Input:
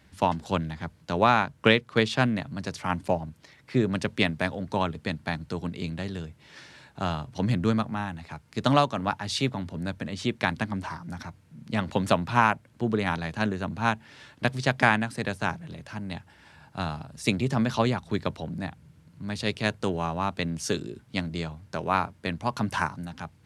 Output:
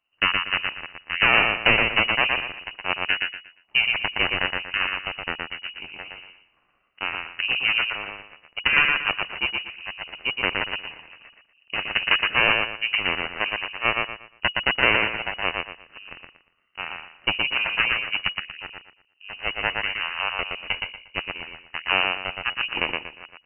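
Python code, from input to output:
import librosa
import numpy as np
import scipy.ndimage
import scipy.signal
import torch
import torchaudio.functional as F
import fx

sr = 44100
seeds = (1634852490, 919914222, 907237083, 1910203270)

p1 = fx.cheby_harmonics(x, sr, harmonics=(3, 6), levels_db=(-10, -12), full_scale_db=-4.0)
p2 = fx.echo_feedback(p1, sr, ms=118, feedback_pct=29, wet_db=-4)
p3 = np.clip(p2, -10.0 ** (-17.5 / 20.0), 10.0 ** (-17.5 / 20.0))
p4 = p2 + (p3 * 10.0 ** (-7.5 / 20.0))
p5 = fx.freq_invert(p4, sr, carrier_hz=2900)
y = p5 * 10.0 ** (1.5 / 20.0)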